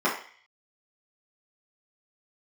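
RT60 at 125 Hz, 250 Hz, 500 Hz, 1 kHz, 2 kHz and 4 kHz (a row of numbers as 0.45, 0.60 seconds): 0.30, 0.35, 0.40, 0.50, 0.65, 0.65 seconds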